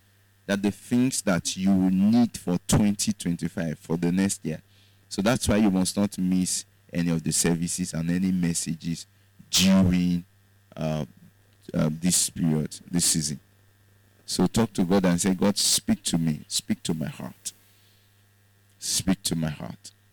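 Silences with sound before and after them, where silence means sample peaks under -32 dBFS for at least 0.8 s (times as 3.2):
13.35–14.29
17.49–18.83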